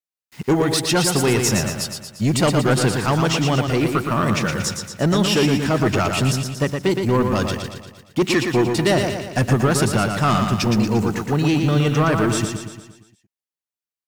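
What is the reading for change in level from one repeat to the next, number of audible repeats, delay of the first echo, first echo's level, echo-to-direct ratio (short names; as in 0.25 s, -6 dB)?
-5.5 dB, 6, 0.116 s, -5.5 dB, -4.0 dB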